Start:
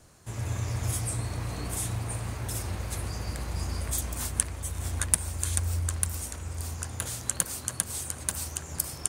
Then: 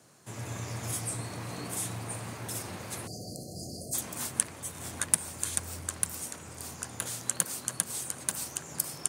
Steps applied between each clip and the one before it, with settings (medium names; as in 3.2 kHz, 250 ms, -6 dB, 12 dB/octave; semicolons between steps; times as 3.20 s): spectral selection erased 3.07–3.94 s, 770–4100 Hz; high-pass 130 Hz 24 dB/octave; trim -1 dB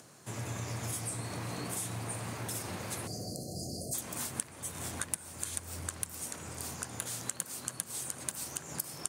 compression 3:1, threshold -37 dBFS, peak gain reduction 15 dB; plate-style reverb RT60 1 s, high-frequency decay 0.55×, pre-delay 115 ms, DRR 20 dB; upward compressor, threshold -55 dBFS; trim +2 dB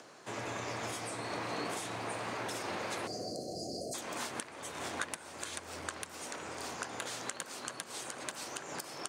three-band isolator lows -17 dB, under 280 Hz, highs -13 dB, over 6.7 kHz; crackle 230 per s -62 dBFS; treble shelf 6 kHz -8 dB; trim +5.5 dB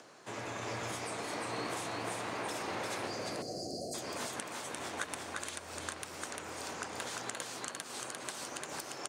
delay 348 ms -3 dB; trim -1.5 dB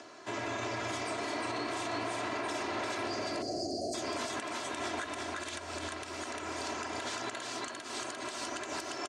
low-pass 6.5 kHz 12 dB/octave; comb 3 ms, depth 64%; peak limiter -30.5 dBFS, peak gain reduction 9.5 dB; trim +4 dB